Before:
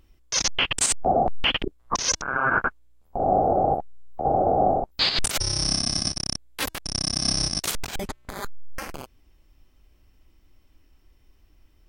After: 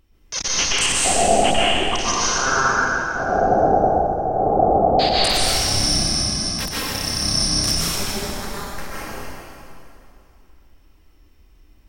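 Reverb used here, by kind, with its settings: plate-style reverb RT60 2.7 s, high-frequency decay 0.85×, pre-delay 0.11 s, DRR -8 dB; gain -2.5 dB

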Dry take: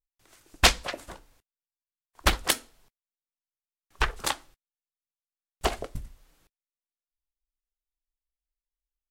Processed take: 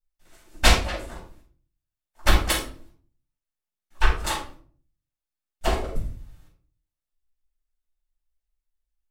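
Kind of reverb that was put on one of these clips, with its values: shoebox room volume 390 m³, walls furnished, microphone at 7.4 m; gain -8.5 dB

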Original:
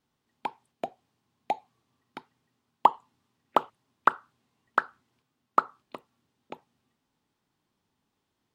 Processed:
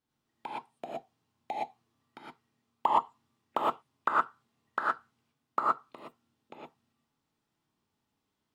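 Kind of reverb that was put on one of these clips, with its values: non-linear reverb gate 0.14 s rising, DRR -5 dB; gain -9 dB

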